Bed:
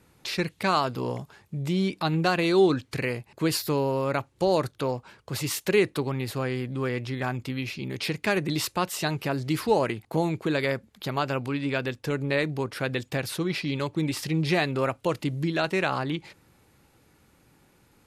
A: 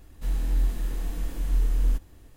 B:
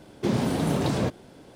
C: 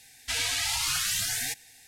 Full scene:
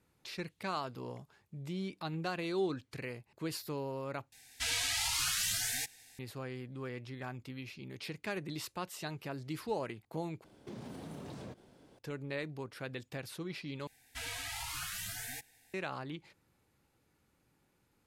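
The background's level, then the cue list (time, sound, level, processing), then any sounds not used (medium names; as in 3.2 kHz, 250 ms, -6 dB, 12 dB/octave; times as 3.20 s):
bed -13.5 dB
4.32 s: replace with C -5 dB
10.44 s: replace with B -12 dB + compression 3:1, threshold -33 dBFS
13.87 s: replace with C -6.5 dB + peaking EQ 5.4 kHz -9.5 dB 2.3 oct
not used: A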